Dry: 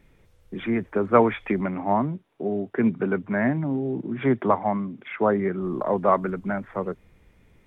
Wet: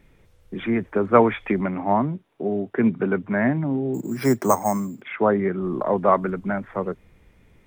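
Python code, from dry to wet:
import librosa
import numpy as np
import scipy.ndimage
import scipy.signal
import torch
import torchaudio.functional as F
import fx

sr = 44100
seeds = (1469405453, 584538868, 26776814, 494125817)

y = fx.resample_bad(x, sr, factor=6, down='none', up='hold', at=(3.94, 5.02))
y = y * 10.0 ** (2.0 / 20.0)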